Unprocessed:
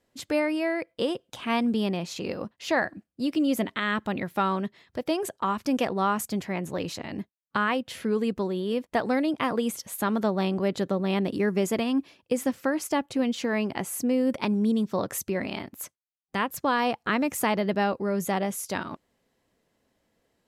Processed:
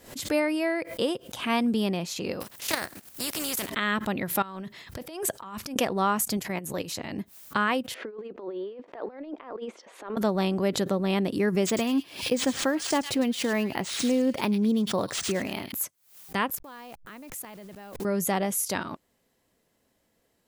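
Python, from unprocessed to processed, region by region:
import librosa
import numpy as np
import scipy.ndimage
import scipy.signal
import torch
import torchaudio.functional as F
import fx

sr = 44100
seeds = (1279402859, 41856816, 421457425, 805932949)

y = fx.spec_flatten(x, sr, power=0.41, at=(2.4, 3.68), fade=0.02)
y = fx.level_steps(y, sr, step_db=11, at=(2.4, 3.68), fade=0.02)
y = fx.chain(y, sr, fx.peak_eq(hz=410.0, db=-3.0, octaves=1.7),
    fx.quant_float(bits=8),
    fx.over_compress(threshold_db=-38.0, ratio=-1.0), at=(4.42, 5.76))
y = fx.chain(y, sr, fx.highpass(hz=48.0, slope=12),
    fx.high_shelf(hz=8400.0, db=10.5),
    fx.level_steps(step_db=10), at=(6.37, 6.91))
y = fx.chain(y, sr, fx.highpass(hz=340.0, slope=24),
    fx.over_compress(threshold_db=-34.0, ratio=-0.5),
    fx.spacing_loss(db_at_10k=42), at=(7.94, 10.17))
y = fx.chain(y, sr, fx.echo_wet_highpass(ms=105, feedback_pct=30, hz=3400.0, wet_db=-5),
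    fx.resample_linear(factor=3), at=(11.66, 15.72))
y = fx.chain(y, sr, fx.delta_hold(step_db=-38.0),
    fx.level_steps(step_db=22), at=(16.55, 18.05))
y = fx.high_shelf(y, sr, hz=8000.0, db=10.5)
y = fx.pre_swell(y, sr, db_per_s=120.0)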